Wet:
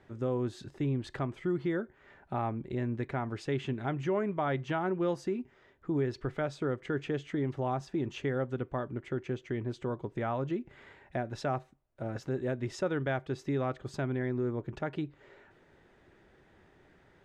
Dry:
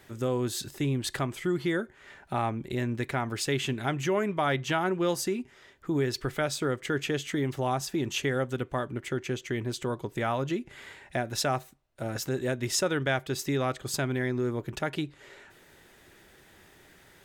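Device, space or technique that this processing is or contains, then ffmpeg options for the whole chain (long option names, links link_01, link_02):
through cloth: -af "lowpass=7200,highshelf=frequency=2600:gain=-17,volume=-2.5dB"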